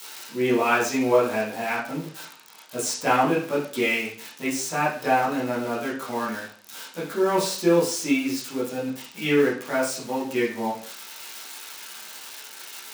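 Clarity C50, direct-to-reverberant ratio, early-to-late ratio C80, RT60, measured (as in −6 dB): 5.5 dB, −8.5 dB, 10.0 dB, 0.50 s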